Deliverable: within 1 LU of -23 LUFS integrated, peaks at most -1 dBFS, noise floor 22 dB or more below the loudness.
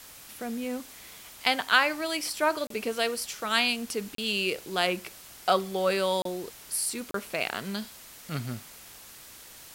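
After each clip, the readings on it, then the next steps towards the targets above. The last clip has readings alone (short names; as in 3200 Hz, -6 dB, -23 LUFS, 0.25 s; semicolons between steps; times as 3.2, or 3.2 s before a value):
dropouts 4; longest dropout 33 ms; noise floor -49 dBFS; noise floor target -51 dBFS; loudness -28.5 LUFS; peak -7.0 dBFS; loudness target -23.0 LUFS
-> interpolate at 2.67/4.15/6.22/7.11, 33 ms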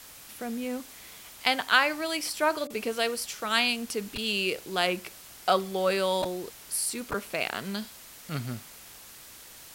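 dropouts 0; noise floor -49 dBFS; noise floor target -51 dBFS
-> noise print and reduce 6 dB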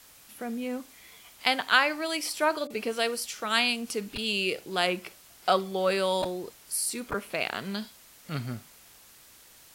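noise floor -55 dBFS; loudness -28.5 LUFS; peak -7.0 dBFS; loudness target -23.0 LUFS
-> gain +5.5 dB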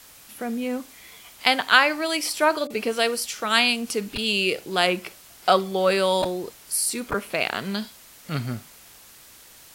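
loudness -23.0 LUFS; peak -1.5 dBFS; noise floor -49 dBFS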